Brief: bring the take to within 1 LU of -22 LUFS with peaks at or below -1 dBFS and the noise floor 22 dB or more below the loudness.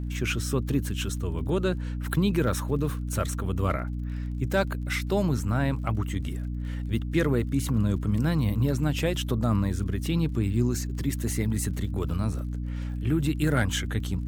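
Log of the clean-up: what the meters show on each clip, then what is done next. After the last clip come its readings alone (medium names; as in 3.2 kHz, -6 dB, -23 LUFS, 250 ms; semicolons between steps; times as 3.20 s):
tick rate 35 per s; hum 60 Hz; highest harmonic 300 Hz; hum level -29 dBFS; loudness -27.5 LUFS; peak level -11.0 dBFS; loudness target -22.0 LUFS
-> de-click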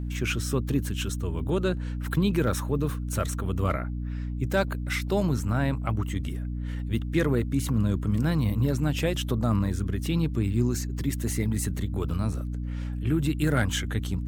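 tick rate 1.1 per s; hum 60 Hz; highest harmonic 300 Hz; hum level -29 dBFS
-> hum notches 60/120/180/240/300 Hz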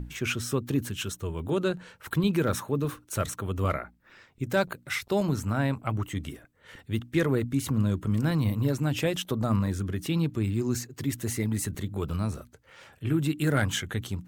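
hum not found; loudness -29.0 LUFS; peak level -12.0 dBFS; loudness target -22.0 LUFS
-> trim +7 dB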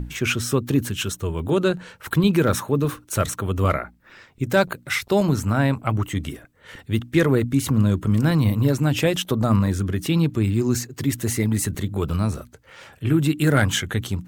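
loudness -22.0 LUFS; peak level -5.0 dBFS; noise floor -54 dBFS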